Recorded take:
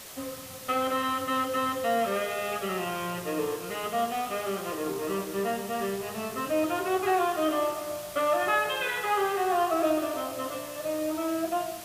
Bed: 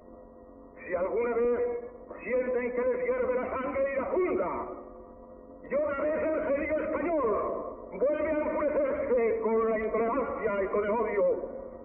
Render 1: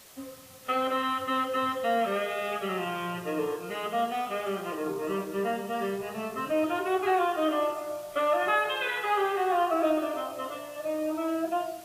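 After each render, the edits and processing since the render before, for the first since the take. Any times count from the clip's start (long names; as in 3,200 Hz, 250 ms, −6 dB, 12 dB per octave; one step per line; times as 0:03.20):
noise reduction from a noise print 8 dB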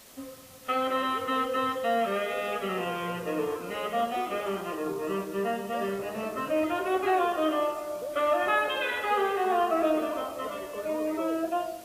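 mix in bed −12 dB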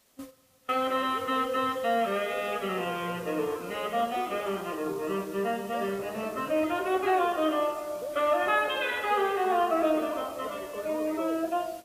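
noise gate −40 dBFS, range −14 dB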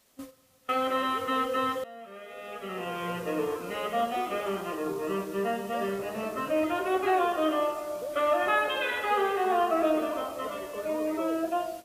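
0:01.84–0:03.11: fade in quadratic, from −19.5 dB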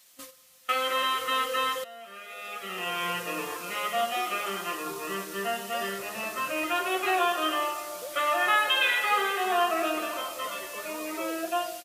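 tilt shelving filter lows −9 dB
comb filter 5.7 ms, depth 42%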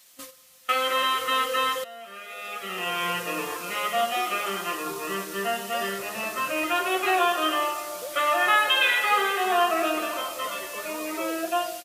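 level +3 dB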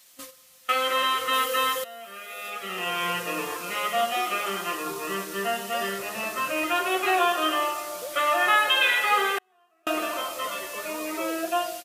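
0:01.33–0:02.50: high-shelf EQ 9,400 Hz +9 dB
0:09.38–0:09.87: gate with flip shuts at −21 dBFS, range −42 dB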